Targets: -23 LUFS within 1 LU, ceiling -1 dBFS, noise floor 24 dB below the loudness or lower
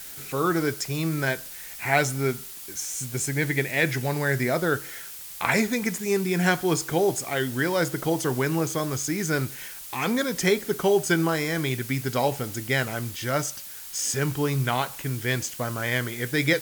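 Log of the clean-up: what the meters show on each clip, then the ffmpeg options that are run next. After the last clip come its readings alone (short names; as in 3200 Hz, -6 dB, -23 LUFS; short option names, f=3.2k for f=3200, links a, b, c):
noise floor -40 dBFS; noise floor target -50 dBFS; loudness -25.5 LUFS; peak -5.5 dBFS; loudness target -23.0 LUFS
-> -af "afftdn=nr=10:nf=-40"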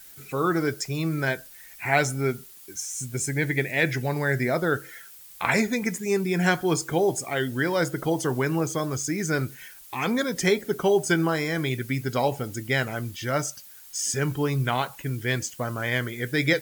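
noise floor -47 dBFS; noise floor target -50 dBFS
-> -af "afftdn=nr=6:nf=-47"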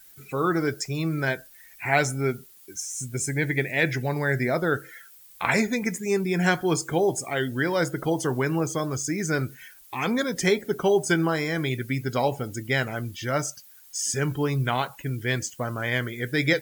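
noise floor -51 dBFS; loudness -26.0 LUFS; peak -6.0 dBFS; loudness target -23.0 LUFS
-> -af "volume=3dB"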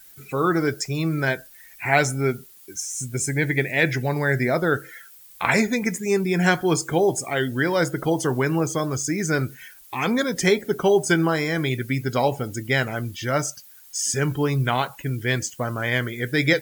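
loudness -23.0 LUFS; peak -3.0 dBFS; noise floor -48 dBFS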